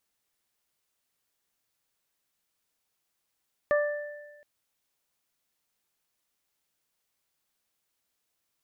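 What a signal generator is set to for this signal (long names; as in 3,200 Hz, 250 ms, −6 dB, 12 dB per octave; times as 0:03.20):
harmonic partials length 0.72 s, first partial 589 Hz, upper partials −9.5/−8 dB, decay 1.25 s, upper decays 0.52/1.41 s, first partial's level −20 dB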